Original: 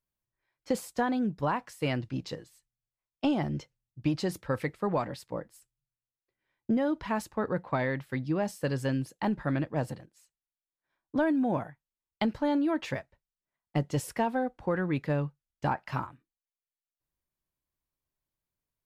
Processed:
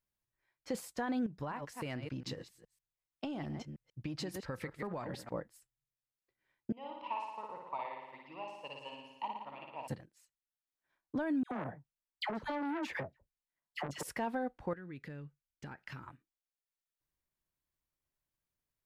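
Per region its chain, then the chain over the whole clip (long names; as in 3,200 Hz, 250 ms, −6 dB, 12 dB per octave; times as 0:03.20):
0:01.26–0:05.34: delay that plays each chunk backwards 139 ms, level −11.5 dB + downward compressor 12 to 1, threshold −34 dBFS
0:06.72–0:09.88: pair of resonant band-passes 1,600 Hz, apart 1.5 octaves + flutter between parallel walls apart 9.8 metres, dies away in 1.2 s
0:11.43–0:14.03: all-pass dispersion lows, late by 84 ms, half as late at 1,200 Hz + saturating transformer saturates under 1,000 Hz
0:14.73–0:16.07: flat-topped bell 810 Hz −9 dB 1.2 octaves + downward compressor 5 to 1, threshold −43 dBFS
whole clip: parametric band 1,800 Hz +2.5 dB; brickwall limiter −26 dBFS; transient designer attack +1 dB, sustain −4 dB; level −2 dB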